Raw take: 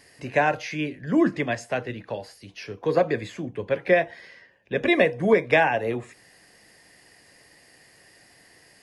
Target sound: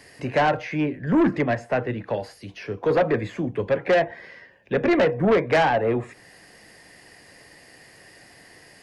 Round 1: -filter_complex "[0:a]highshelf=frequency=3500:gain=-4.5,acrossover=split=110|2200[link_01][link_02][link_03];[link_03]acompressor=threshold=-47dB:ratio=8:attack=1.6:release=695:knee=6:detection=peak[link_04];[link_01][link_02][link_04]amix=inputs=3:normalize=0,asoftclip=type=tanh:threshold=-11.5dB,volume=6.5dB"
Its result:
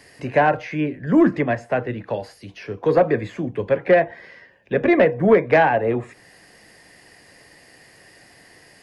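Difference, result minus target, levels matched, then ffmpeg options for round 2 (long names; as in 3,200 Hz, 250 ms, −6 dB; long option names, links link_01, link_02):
soft clipping: distortion −10 dB
-filter_complex "[0:a]highshelf=frequency=3500:gain=-4.5,acrossover=split=110|2200[link_01][link_02][link_03];[link_03]acompressor=threshold=-47dB:ratio=8:attack=1.6:release=695:knee=6:detection=peak[link_04];[link_01][link_02][link_04]amix=inputs=3:normalize=0,asoftclip=type=tanh:threshold=-20.5dB,volume=6.5dB"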